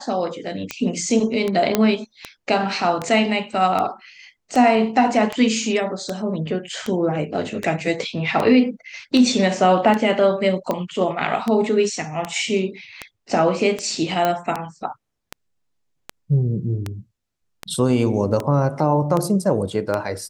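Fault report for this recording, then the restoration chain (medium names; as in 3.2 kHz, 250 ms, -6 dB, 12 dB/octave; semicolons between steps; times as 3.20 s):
tick 78 rpm -10 dBFS
1.75 s: pop -2 dBFS
14.25 s: pop -7 dBFS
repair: de-click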